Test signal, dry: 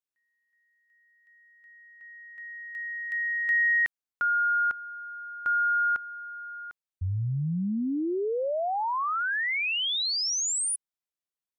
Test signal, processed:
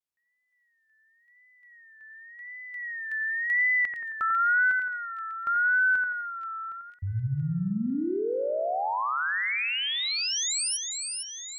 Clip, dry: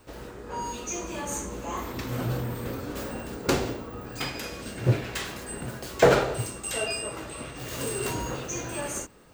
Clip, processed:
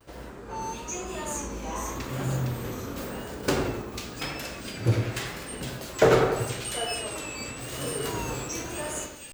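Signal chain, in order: two-band feedback delay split 2.3 kHz, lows 88 ms, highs 482 ms, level -5 dB; wow and flutter 0.79 Hz 110 cents; trim -1.5 dB

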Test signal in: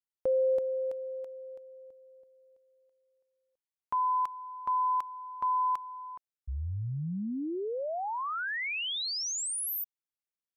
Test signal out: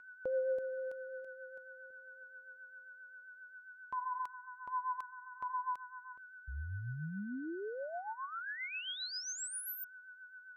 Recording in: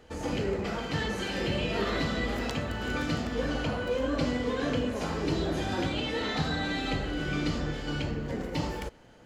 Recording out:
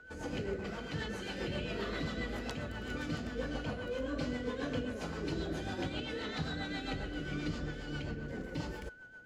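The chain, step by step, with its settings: whistle 1.5 kHz -42 dBFS; rotary cabinet horn 7.5 Hz; trim -6 dB

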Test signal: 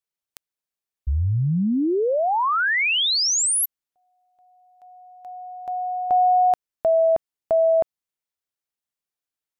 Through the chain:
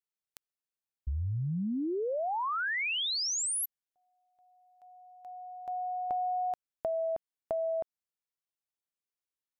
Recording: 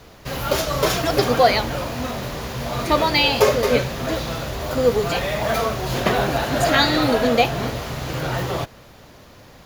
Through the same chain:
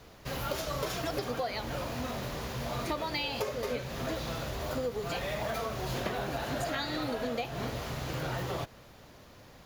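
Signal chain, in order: compression 10:1, threshold -22 dBFS; trim -8 dB

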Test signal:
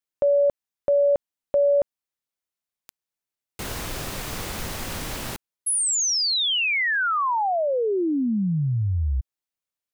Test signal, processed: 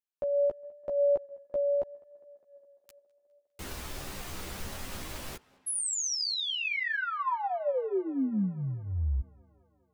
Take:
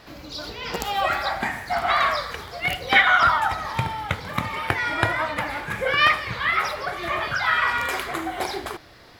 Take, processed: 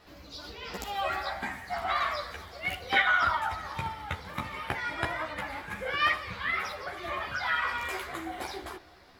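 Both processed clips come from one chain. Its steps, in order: tape echo 205 ms, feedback 76%, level -23 dB, low-pass 4.1 kHz; chorus voices 6, 0.28 Hz, delay 13 ms, depth 2.9 ms; trim -6 dB

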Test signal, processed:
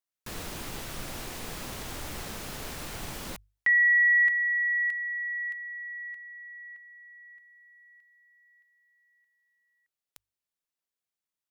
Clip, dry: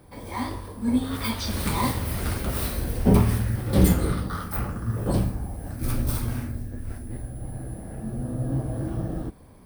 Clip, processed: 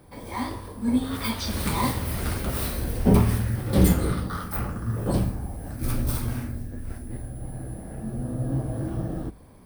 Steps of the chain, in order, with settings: hum notches 50/100 Hz

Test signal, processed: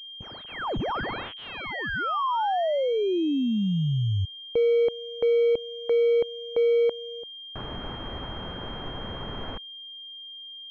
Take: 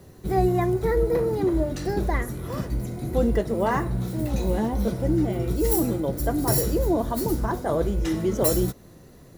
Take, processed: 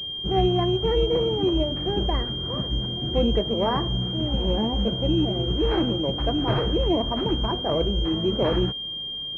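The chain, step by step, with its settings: class-D stage that switches slowly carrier 3.2 kHz

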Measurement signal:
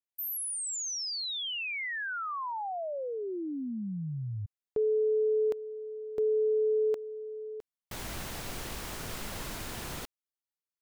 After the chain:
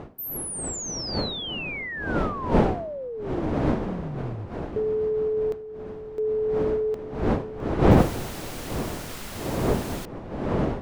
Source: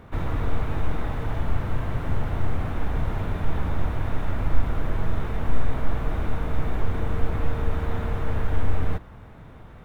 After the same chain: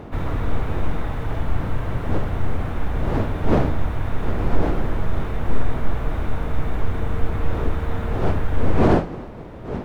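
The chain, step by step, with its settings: wind noise 440 Hz -28 dBFS; loudness maximiser +6.5 dB; trim -4.5 dB

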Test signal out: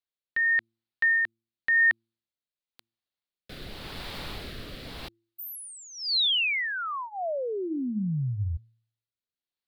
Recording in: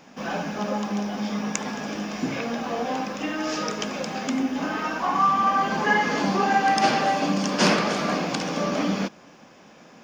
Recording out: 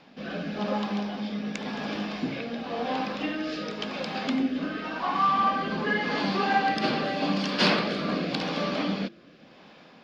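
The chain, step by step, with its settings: resonant high shelf 5.2 kHz -7.5 dB, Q 3; rotary cabinet horn 0.9 Hz; de-hum 113.4 Hz, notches 3; trim -1 dB

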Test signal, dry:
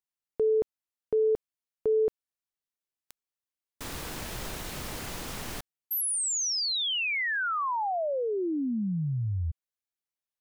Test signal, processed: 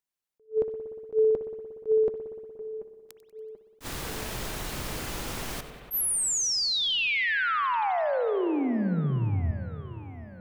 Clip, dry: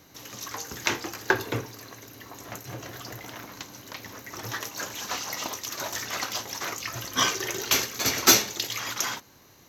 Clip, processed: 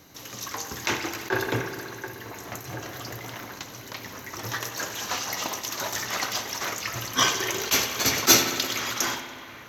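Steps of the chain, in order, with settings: two-band feedback delay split 2.5 kHz, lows 735 ms, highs 95 ms, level -16 dB; spring tank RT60 2.3 s, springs 59 ms, chirp 35 ms, DRR 7 dB; attacks held to a fixed rise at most 350 dB/s; trim +2 dB

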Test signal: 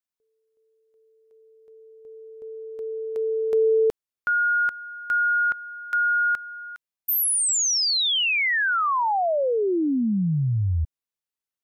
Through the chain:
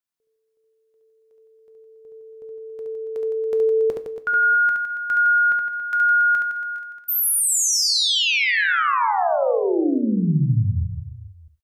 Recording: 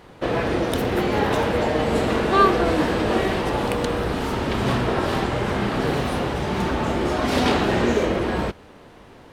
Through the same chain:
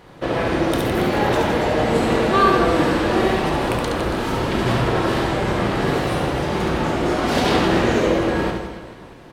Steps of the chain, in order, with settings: reverse bouncing-ball echo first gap 70 ms, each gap 1.3×, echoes 5; gated-style reverb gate 130 ms falling, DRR 9 dB

